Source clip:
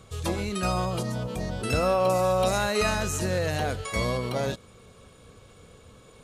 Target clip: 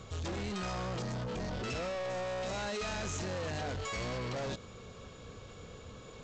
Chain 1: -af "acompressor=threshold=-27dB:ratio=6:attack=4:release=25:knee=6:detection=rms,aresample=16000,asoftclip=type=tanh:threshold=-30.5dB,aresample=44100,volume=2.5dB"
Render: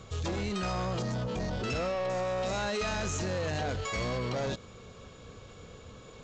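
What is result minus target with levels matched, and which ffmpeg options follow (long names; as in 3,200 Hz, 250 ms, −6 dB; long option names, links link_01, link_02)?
soft clipping: distortion −5 dB
-af "acompressor=threshold=-27dB:ratio=6:attack=4:release=25:knee=6:detection=rms,aresample=16000,asoftclip=type=tanh:threshold=-37.5dB,aresample=44100,volume=2.5dB"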